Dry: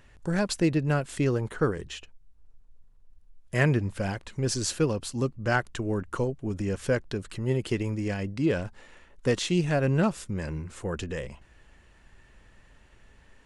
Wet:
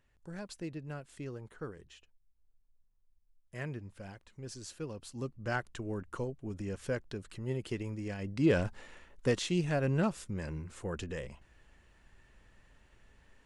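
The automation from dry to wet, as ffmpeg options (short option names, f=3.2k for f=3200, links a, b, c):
-af "volume=1dB,afade=t=in:st=4.77:d=0.7:silence=0.398107,afade=t=in:st=8.18:d=0.45:silence=0.316228,afade=t=out:st=8.63:d=0.8:silence=0.446684"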